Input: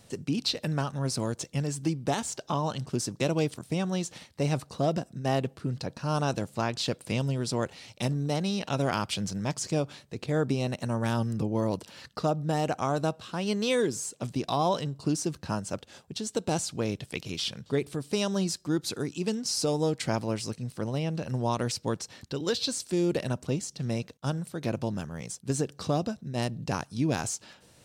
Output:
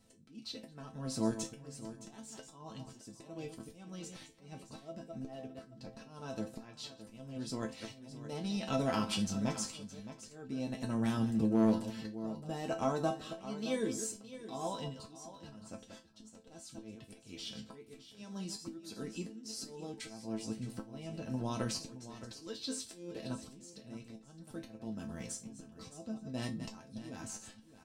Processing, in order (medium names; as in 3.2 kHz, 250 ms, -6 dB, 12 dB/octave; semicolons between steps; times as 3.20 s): chunks repeated in reverse 119 ms, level -13.5 dB; in parallel at +0.5 dB: compression, threshold -34 dBFS, peak gain reduction 12.5 dB; on the sum: bass shelf 270 Hz +7.5 dB; gate -38 dBFS, range -10 dB; slow attack 714 ms; chord resonator A3 minor, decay 0.21 s; delay 617 ms -13.5 dB; overload inside the chain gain 27.5 dB; trim +6.5 dB